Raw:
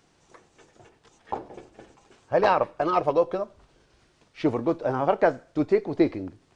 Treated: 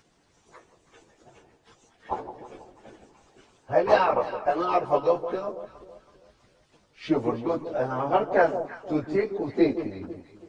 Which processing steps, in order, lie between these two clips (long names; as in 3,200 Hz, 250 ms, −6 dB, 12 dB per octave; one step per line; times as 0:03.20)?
time stretch by phase vocoder 1.6×
delay that swaps between a low-pass and a high-pass 163 ms, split 920 Hz, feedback 57%, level −9 dB
harmonic and percussive parts rebalanced percussive +7 dB
level −3 dB